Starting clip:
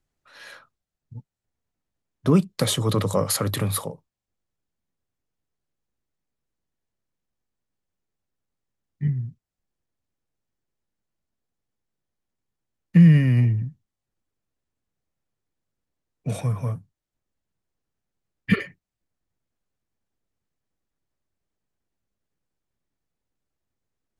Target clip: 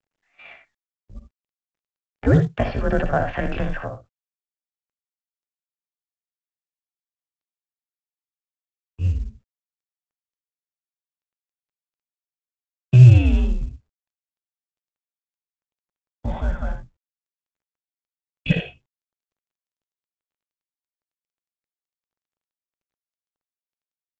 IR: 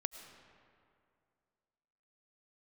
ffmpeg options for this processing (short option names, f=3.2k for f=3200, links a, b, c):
-filter_complex "[0:a]agate=range=-18dB:threshold=-44dB:ratio=16:detection=peak,asetrate=66075,aresample=44100,atempo=0.66742,asplit=2[a][b];[b]aecho=0:1:59|79:0.335|0.282[c];[a][c]amix=inputs=2:normalize=0,highpass=f=150:t=q:w=0.5412,highpass=f=150:t=q:w=1.307,lowpass=f=3.1k:t=q:w=0.5176,lowpass=f=3.1k:t=q:w=0.7071,lowpass=f=3.1k:t=q:w=1.932,afreqshift=-130,volume=2dB" -ar 16000 -c:a pcm_mulaw